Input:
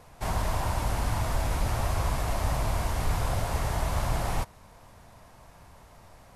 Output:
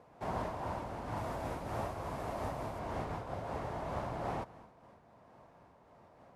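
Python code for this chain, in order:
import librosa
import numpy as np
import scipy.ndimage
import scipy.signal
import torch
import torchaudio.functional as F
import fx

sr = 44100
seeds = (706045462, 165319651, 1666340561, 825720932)

y = scipy.signal.sosfilt(scipy.signal.butter(2, 340.0, 'highpass', fs=sr, output='sos'), x)
y = fx.tilt_eq(y, sr, slope=-4.5)
y = fx.echo_feedback(y, sr, ms=212, feedback_pct=53, wet_db=-21.5)
y = fx.rider(y, sr, range_db=10, speed_s=0.5)
y = fx.high_shelf(y, sr, hz=8400.0, db=fx.steps((0.0, -3.0), (1.16, 5.5), (2.78, -6.5)))
y = fx.am_noise(y, sr, seeds[0], hz=5.7, depth_pct=65)
y = y * 10.0 ** (-4.0 / 20.0)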